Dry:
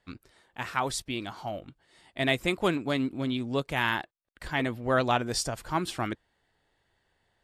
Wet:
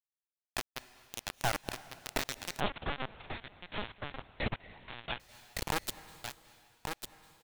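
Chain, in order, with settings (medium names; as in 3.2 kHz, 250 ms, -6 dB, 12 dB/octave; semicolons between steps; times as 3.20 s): recorder AGC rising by 19 dB/s; reverb removal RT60 1.1 s; elliptic band-stop 860–1800 Hz, stop band 40 dB; compression 4:1, threshold -39 dBFS, peak gain reduction 14.5 dB; half-wave rectifier; random-step tremolo 4.4 Hz, depth 75%; word length cut 6-bit, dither none; delay 1150 ms -6 dB; reverberation RT60 2.0 s, pre-delay 191 ms, DRR 16.5 dB; 2.60–5.20 s: LPC vocoder at 8 kHz pitch kept; trim +10 dB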